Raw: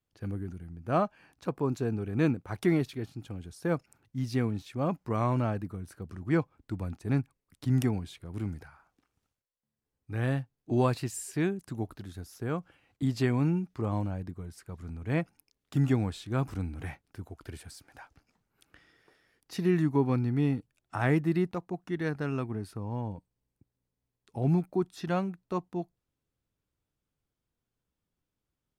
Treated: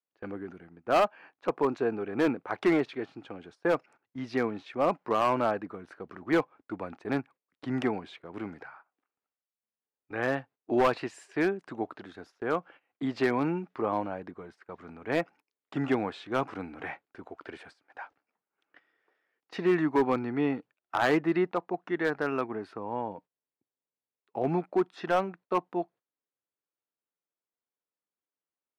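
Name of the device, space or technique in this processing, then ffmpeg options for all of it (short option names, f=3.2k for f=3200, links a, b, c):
walkie-talkie: -af "highpass=430,lowpass=2.3k,asoftclip=type=hard:threshold=-26.5dB,agate=range=-15dB:threshold=-59dB:ratio=16:detection=peak,volume=8.5dB"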